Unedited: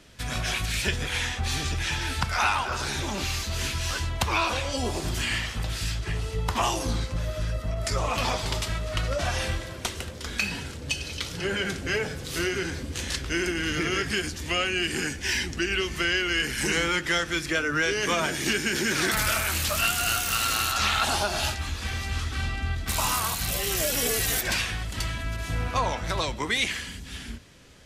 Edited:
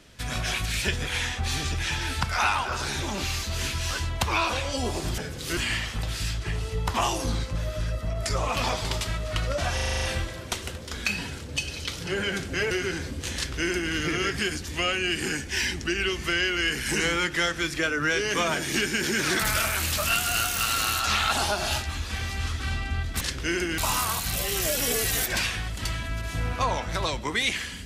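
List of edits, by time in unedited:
9.35 s: stutter 0.04 s, 8 plays
12.04–12.43 s: move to 5.18 s
13.07–13.64 s: copy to 22.93 s

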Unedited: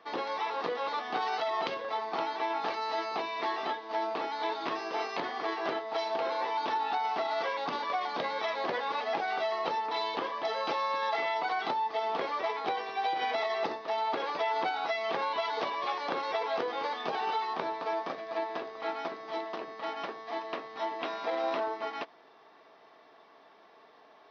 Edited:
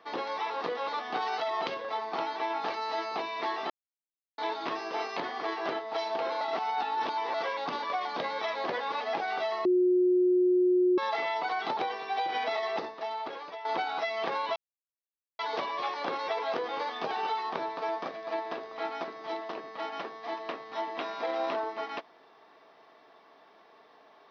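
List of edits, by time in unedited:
3.70–4.38 s: mute
6.41–7.34 s: reverse
9.65–10.98 s: bleep 362 Hz -20.5 dBFS
11.77–12.64 s: delete
13.50–14.52 s: fade out, to -13 dB
15.43 s: insert silence 0.83 s

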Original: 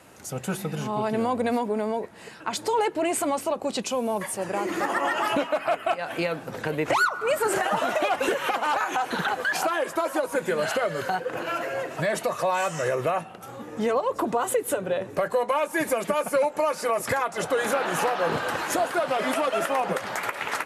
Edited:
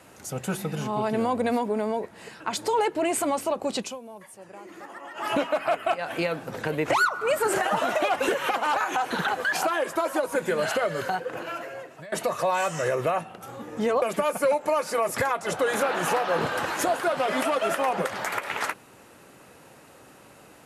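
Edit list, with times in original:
3.77–5.36 s: dip -16 dB, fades 0.22 s
10.99–12.12 s: fade out, to -20.5 dB
14.02–15.93 s: delete

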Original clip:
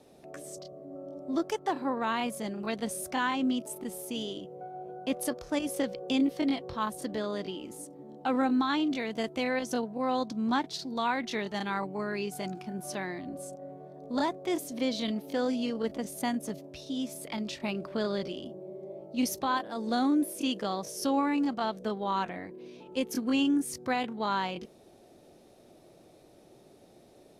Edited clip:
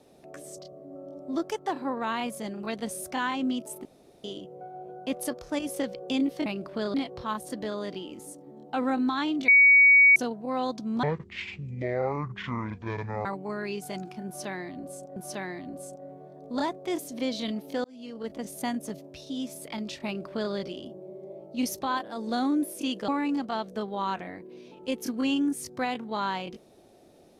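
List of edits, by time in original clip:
3.85–4.24 s: room tone
9.00–9.68 s: bleep 2.25 kHz -13 dBFS
10.55–11.75 s: speed 54%
12.76–13.66 s: loop, 2 plays
15.44–16.09 s: fade in
17.65–18.13 s: copy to 6.46 s
20.68–21.17 s: delete

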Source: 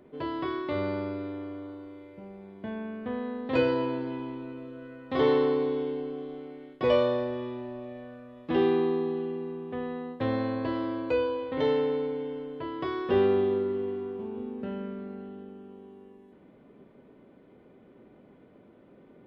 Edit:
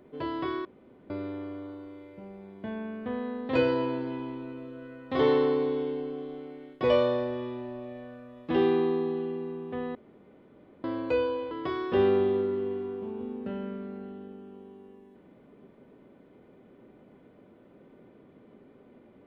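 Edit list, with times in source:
0.65–1.10 s: room tone
9.95–10.84 s: room tone
11.51–12.68 s: delete

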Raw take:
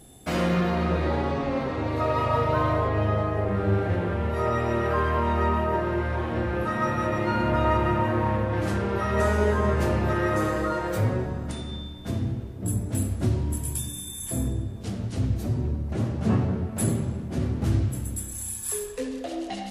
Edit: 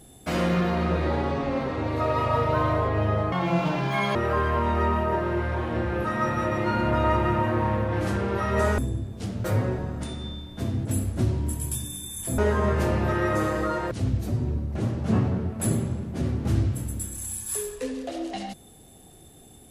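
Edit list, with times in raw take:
3.32–4.76 s: speed 173%
9.39–10.92 s: swap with 14.42–15.08 s
12.33–12.89 s: delete

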